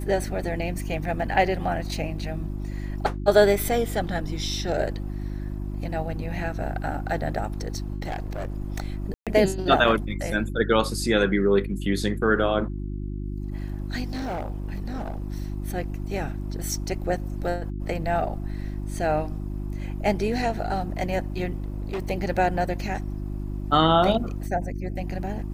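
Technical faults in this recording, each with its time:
mains hum 50 Hz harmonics 7 −31 dBFS
0:08.06–0:08.56: clipping −26 dBFS
0:09.14–0:09.27: drop-out 127 ms
0:14.13–0:15.24: clipping −26 dBFS
0:21.58–0:22.11: clipping −25.5 dBFS

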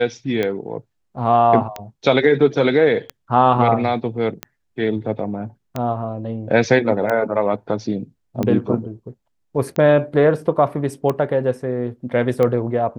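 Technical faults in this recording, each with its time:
scratch tick 45 rpm −10 dBFS

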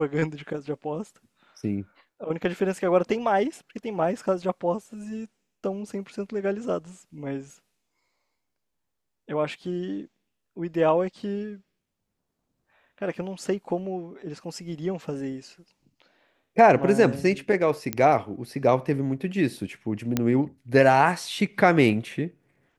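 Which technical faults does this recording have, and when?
0:17.93: click −10 dBFS
0:20.17: click −9 dBFS

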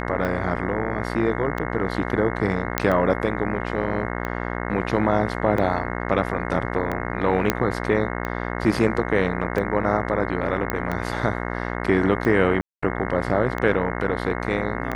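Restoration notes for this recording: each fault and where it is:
mains buzz 60 Hz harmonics 36 −28 dBFS
scratch tick 45 rpm −15 dBFS
0:02.78: click −3 dBFS
0:07.50: click −4 dBFS
0:10.70: click −9 dBFS
0:12.61–0:12.82: drop-out 215 ms

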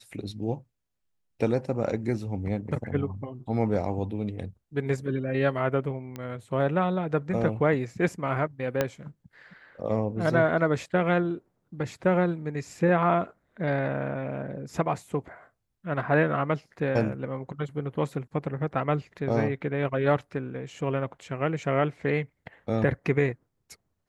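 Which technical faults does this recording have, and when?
0:06.16: click −22 dBFS
0:08.81: click −10 dBFS

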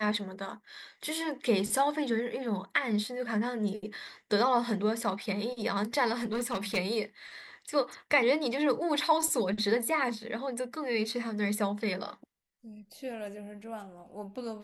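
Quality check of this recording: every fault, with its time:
0:06.18–0:06.78: clipping −27.5 dBFS

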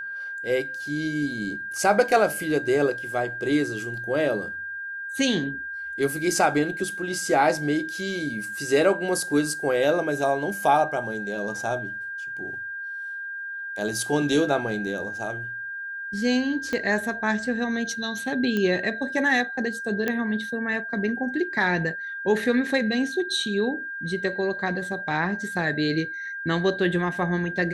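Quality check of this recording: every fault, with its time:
whistle 1,600 Hz −31 dBFS
0:16.73: click −15 dBFS
0:18.57: click −14 dBFS
0:20.08: click −12 dBFS

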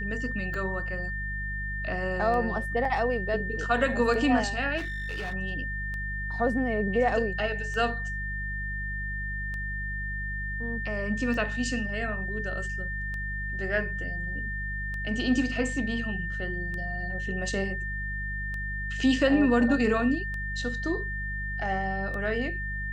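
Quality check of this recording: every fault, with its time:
mains hum 50 Hz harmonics 4 −35 dBFS
scratch tick 33 1/3 rpm −25 dBFS
whistle 1,800 Hz −33 dBFS
0:02.85: drop-out 2.7 ms
0:04.77–0:05.34: clipping −29.5 dBFS

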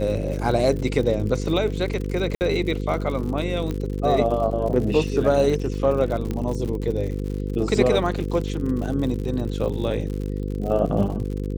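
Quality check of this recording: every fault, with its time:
mains buzz 50 Hz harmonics 10 −27 dBFS
surface crackle 85 per second −30 dBFS
0:02.35–0:02.41: drop-out 59 ms
0:03.71: click −16 dBFS
0:06.31: click −15 dBFS

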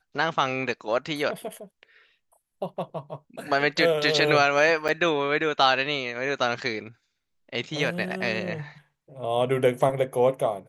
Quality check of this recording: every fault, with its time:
0:04.88–0:04.89: drop-out 7.6 ms

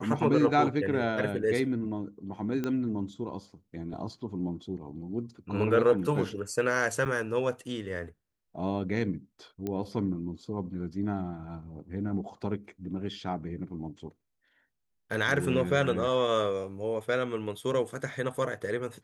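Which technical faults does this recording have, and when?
0:02.64: click −19 dBFS
0:07.05–0:07.06: drop-out 8.4 ms
0:09.67: click −21 dBFS

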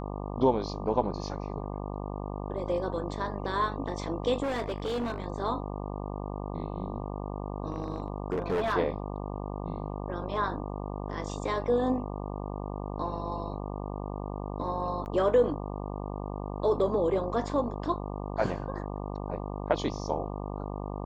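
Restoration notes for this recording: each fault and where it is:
mains buzz 50 Hz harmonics 24 −36 dBFS
0:04.42–0:05.24: clipping −27.5 dBFS
0:07.68–0:08.74: clipping −24.5 dBFS
0:15.05–0:15.06: drop-out 9.9 ms

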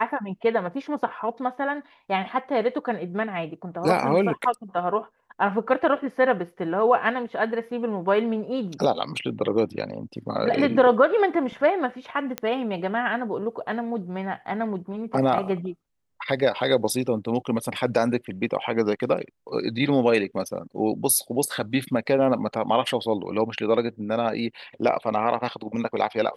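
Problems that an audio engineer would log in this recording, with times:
0:12.38: click −12 dBFS

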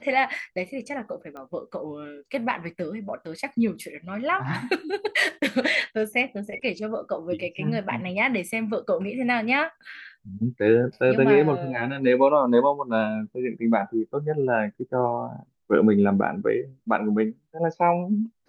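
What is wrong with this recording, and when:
0:01.37: click −28 dBFS

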